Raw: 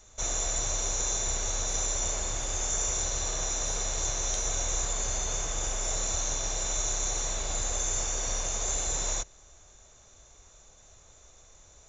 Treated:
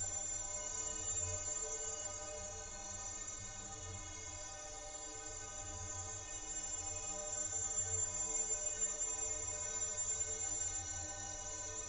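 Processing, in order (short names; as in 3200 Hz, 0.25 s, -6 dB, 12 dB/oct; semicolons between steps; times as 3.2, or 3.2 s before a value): Paulstretch 10×, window 0.10 s, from 1.96; metallic resonator 91 Hz, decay 0.53 s, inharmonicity 0.03; gain -1.5 dB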